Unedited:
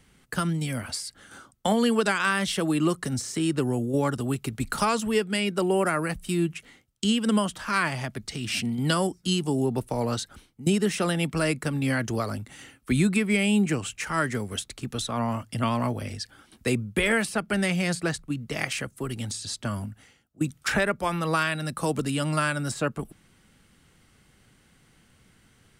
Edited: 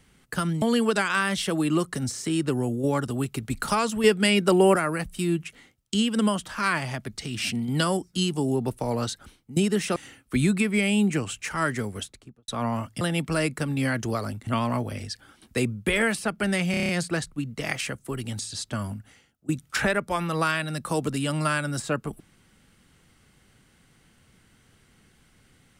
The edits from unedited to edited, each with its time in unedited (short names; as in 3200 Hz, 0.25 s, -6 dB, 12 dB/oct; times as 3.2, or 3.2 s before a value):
0.62–1.72 cut
5.14–5.86 gain +5.5 dB
11.06–12.52 move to 15.57
14.43–15.04 studio fade out
17.81 stutter 0.03 s, 7 plays